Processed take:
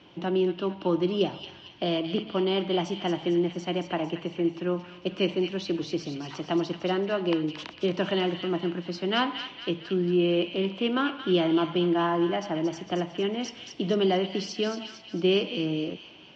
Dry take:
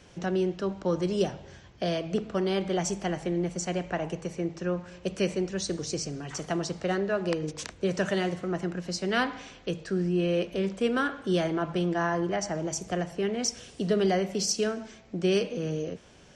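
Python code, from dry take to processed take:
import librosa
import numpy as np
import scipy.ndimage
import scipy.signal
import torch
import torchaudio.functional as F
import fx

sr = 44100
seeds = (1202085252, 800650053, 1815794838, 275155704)

y = fx.cabinet(x, sr, low_hz=130.0, low_slope=12, high_hz=4100.0, hz=(320.0, 470.0, 950.0, 1700.0, 3000.0), db=(9, -4, 6, -5, 8))
y = fx.echo_wet_highpass(y, sr, ms=226, feedback_pct=51, hz=2000.0, wet_db=-5.5)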